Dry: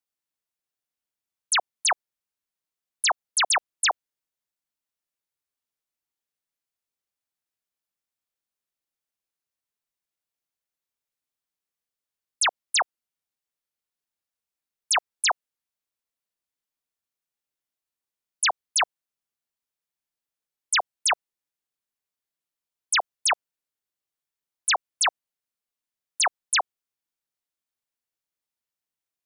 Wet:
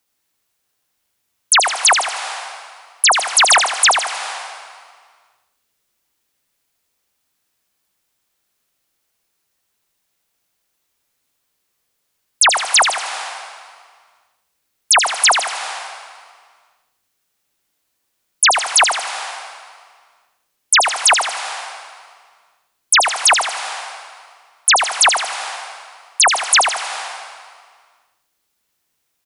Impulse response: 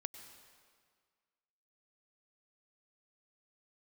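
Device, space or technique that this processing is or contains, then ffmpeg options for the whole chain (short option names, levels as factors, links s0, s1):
ducked reverb: -filter_complex "[0:a]asplit=3[s0][s1][s2];[1:a]atrim=start_sample=2205[s3];[s1][s3]afir=irnorm=-1:irlink=0[s4];[s2]apad=whole_len=1290336[s5];[s4][s5]sidechaincompress=threshold=0.0158:ratio=12:attack=16:release=299,volume=2.82[s6];[s0][s6]amix=inputs=2:normalize=0,asettb=1/sr,asplit=3[s7][s8][s9];[s7]atrim=end=1.534[s10];[s8]atrim=start=1.53:end=3.07,asetpts=PTS-STARTPTS,afade=t=in:d=0.004:c=qsin,afade=t=out:st=1.536:d=0.004:c=qsin,highpass=f=270:w=0.5412,highpass=f=270:w=1.3066[s11];[s9]atrim=start=3.066[s12];[s10][s11]acrossfade=d=0.004:c1=hsin:c2=qsin[s13];[s13][s12]acrossfade=d=0.004:c1=qsin:c2=hsin,aecho=1:1:79|158|237|316|395|474:0.501|0.231|0.106|0.0488|0.0224|0.0103,volume=2.51"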